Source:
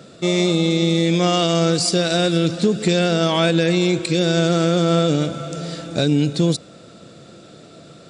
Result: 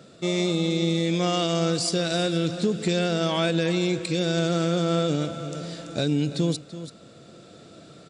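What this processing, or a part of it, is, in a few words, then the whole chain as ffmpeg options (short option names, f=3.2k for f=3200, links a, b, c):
ducked delay: -filter_complex "[0:a]asplit=3[a][b][c];[b]adelay=334,volume=-2dB[d];[c]apad=whole_len=371742[e];[d][e]sidechaincompress=threshold=-33dB:ratio=3:attack=16:release=728[f];[a][f]amix=inputs=2:normalize=0,volume=-6.5dB"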